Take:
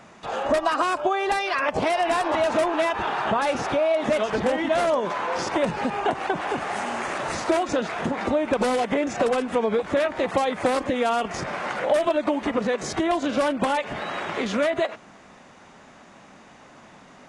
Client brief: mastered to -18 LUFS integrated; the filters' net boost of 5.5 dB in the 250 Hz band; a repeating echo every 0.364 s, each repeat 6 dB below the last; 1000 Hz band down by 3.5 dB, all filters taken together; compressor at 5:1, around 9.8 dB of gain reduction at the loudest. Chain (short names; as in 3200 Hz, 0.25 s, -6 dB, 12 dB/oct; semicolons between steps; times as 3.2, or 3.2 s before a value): bell 250 Hz +7 dB; bell 1000 Hz -5.5 dB; compressor 5:1, threshold -28 dBFS; feedback echo 0.364 s, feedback 50%, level -6 dB; gain +12 dB